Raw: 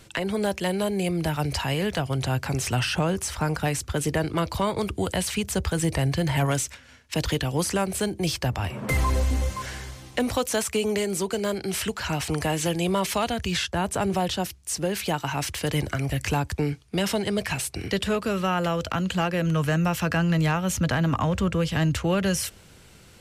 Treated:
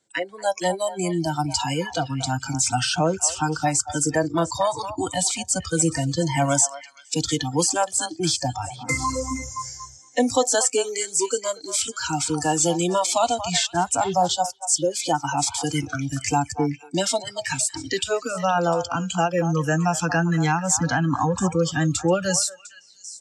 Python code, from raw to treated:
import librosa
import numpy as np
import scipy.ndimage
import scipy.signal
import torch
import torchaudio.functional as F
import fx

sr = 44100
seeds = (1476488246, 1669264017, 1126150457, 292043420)

y = fx.noise_reduce_blind(x, sr, reduce_db=26)
y = fx.cabinet(y, sr, low_hz=210.0, low_slope=12, high_hz=8500.0, hz=(750.0, 1200.0, 2600.0, 7500.0), db=(3, -7, -10, 9))
y = fx.echo_stepped(y, sr, ms=234, hz=920.0, octaves=1.4, feedback_pct=70, wet_db=-9)
y = y * 10.0 ** (6.5 / 20.0)